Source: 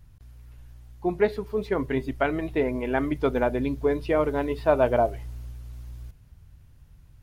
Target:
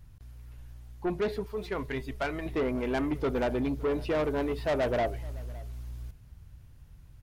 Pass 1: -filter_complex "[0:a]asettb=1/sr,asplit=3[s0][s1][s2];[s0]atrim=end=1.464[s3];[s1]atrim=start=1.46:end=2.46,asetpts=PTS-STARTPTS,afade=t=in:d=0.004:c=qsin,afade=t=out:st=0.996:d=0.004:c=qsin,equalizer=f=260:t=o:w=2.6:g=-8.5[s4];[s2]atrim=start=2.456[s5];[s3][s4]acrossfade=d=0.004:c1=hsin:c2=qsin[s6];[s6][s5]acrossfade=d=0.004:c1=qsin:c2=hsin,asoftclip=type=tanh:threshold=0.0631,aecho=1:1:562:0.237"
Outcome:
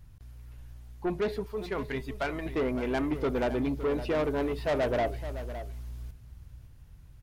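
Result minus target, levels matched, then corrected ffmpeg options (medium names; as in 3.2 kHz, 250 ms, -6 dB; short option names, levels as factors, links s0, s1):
echo-to-direct +9.5 dB
-filter_complex "[0:a]asettb=1/sr,asplit=3[s0][s1][s2];[s0]atrim=end=1.464[s3];[s1]atrim=start=1.46:end=2.46,asetpts=PTS-STARTPTS,afade=t=in:d=0.004:c=qsin,afade=t=out:st=0.996:d=0.004:c=qsin,equalizer=f=260:t=o:w=2.6:g=-8.5[s4];[s2]atrim=start=2.456[s5];[s3][s4]acrossfade=d=0.004:c1=hsin:c2=qsin[s6];[s6][s5]acrossfade=d=0.004:c1=qsin:c2=hsin,asoftclip=type=tanh:threshold=0.0631,aecho=1:1:562:0.0794"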